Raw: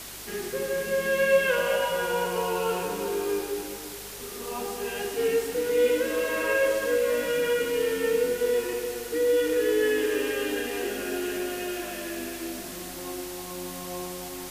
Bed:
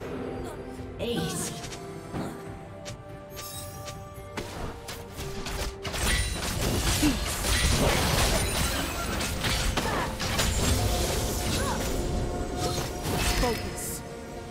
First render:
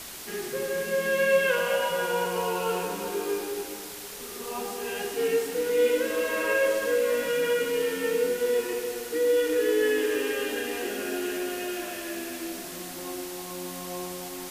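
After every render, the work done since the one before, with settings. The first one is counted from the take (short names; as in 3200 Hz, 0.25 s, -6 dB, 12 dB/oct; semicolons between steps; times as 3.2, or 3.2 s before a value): de-hum 50 Hz, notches 12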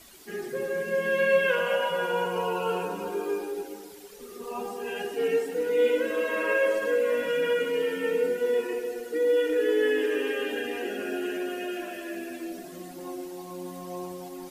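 denoiser 13 dB, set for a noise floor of -39 dBFS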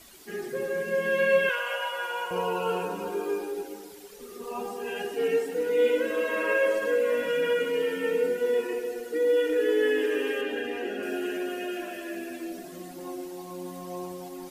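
1.49–2.31 HPF 870 Hz; 10.41–11.03 high shelf 5400 Hz -9 dB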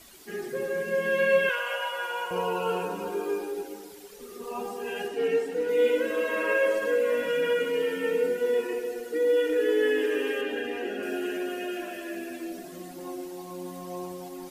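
5.08–5.69 high shelf 9200 Hz -10 dB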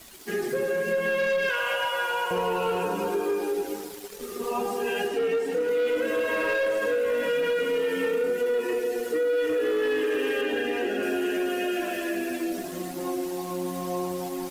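sample leveller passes 2; compressor 4:1, threshold -24 dBFS, peak gain reduction 7.5 dB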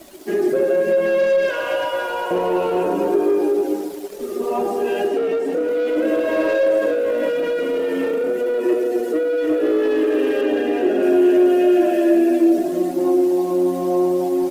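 soft clip -22 dBFS, distortion -20 dB; small resonant body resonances 340/590 Hz, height 17 dB, ringing for 30 ms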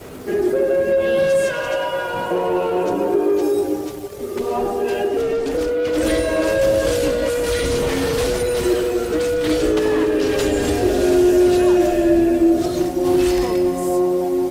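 add bed -1 dB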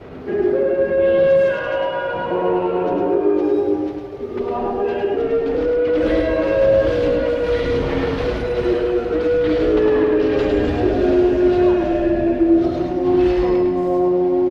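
air absorption 300 m; echo 0.105 s -4 dB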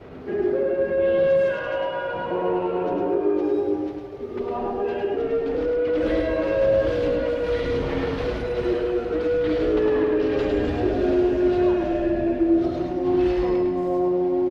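gain -5 dB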